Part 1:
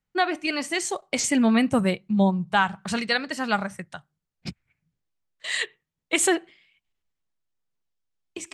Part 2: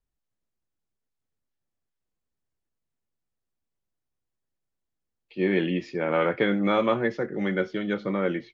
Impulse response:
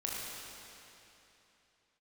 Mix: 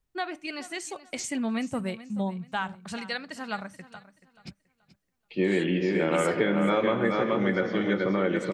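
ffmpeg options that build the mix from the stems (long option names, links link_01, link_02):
-filter_complex "[0:a]volume=-9dB,asplit=2[link_01][link_02];[link_02]volume=-16.5dB[link_03];[1:a]volume=3dB,asplit=3[link_04][link_05][link_06];[link_05]volume=-10dB[link_07];[link_06]volume=-3dB[link_08];[2:a]atrim=start_sample=2205[link_09];[link_07][link_09]afir=irnorm=-1:irlink=0[link_10];[link_03][link_08]amix=inputs=2:normalize=0,aecho=0:1:430|860|1290|1720:1|0.27|0.0729|0.0197[link_11];[link_01][link_04][link_10][link_11]amix=inputs=4:normalize=0,acompressor=threshold=-23dB:ratio=3"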